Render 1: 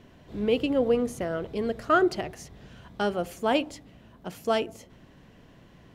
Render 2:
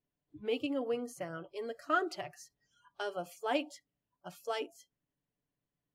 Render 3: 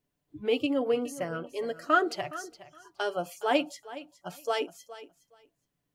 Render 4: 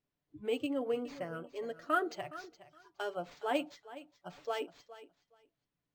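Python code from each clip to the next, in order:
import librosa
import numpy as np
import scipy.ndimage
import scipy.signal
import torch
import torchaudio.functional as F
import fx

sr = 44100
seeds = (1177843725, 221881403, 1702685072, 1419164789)

y1 = fx.hpss(x, sr, part='harmonic', gain_db=-4)
y1 = fx.noise_reduce_blind(y1, sr, reduce_db=28)
y1 = y1 + 0.44 * np.pad(y1, (int(6.9 * sr / 1000.0), 0))[:len(y1)]
y1 = F.gain(torch.from_numpy(y1), -7.5).numpy()
y2 = fx.echo_feedback(y1, sr, ms=416, feedback_pct=17, wet_db=-16.0)
y2 = F.gain(torch.from_numpy(y2), 7.0).numpy()
y3 = np.interp(np.arange(len(y2)), np.arange(len(y2))[::4], y2[::4])
y3 = F.gain(torch.from_numpy(y3), -7.0).numpy()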